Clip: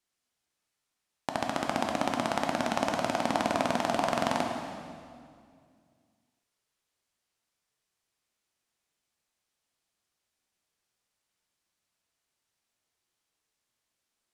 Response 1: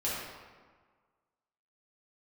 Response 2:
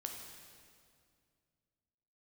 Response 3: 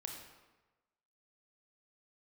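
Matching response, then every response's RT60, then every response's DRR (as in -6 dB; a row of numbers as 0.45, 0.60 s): 2; 1.5, 2.2, 1.2 s; -9.0, 1.5, 1.5 dB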